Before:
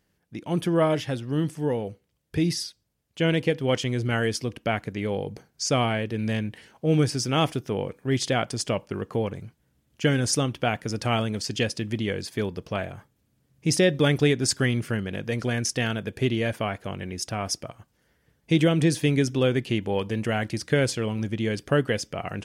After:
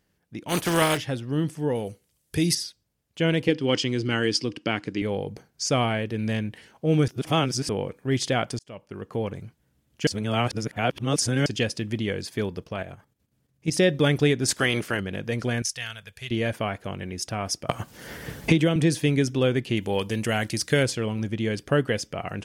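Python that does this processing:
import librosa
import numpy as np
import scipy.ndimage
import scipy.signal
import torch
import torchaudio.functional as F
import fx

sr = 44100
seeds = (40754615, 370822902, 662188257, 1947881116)

y = fx.spec_flatten(x, sr, power=0.48, at=(0.48, 0.96), fade=0.02)
y = fx.peak_eq(y, sr, hz=10000.0, db=14.5, octaves=1.9, at=(1.75, 2.55))
y = fx.cabinet(y, sr, low_hz=120.0, low_slope=12, high_hz=9200.0, hz=(310.0, 660.0, 2900.0, 4900.0), db=(9, -7, 5, 10), at=(3.48, 5.02))
y = fx.level_steps(y, sr, step_db=10, at=(12.64, 13.76))
y = fx.spec_clip(y, sr, under_db=16, at=(14.47, 14.99), fade=0.02)
y = fx.tone_stack(y, sr, knobs='10-0-10', at=(15.62, 16.31))
y = fx.band_squash(y, sr, depth_pct=100, at=(17.69, 18.76))
y = fx.high_shelf(y, sr, hz=3900.0, db=12.0, at=(19.77, 20.83))
y = fx.edit(y, sr, fx.reverse_span(start_s=7.08, length_s=0.61),
    fx.fade_in_span(start_s=8.59, length_s=0.76),
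    fx.reverse_span(start_s=10.07, length_s=1.39), tone=tone)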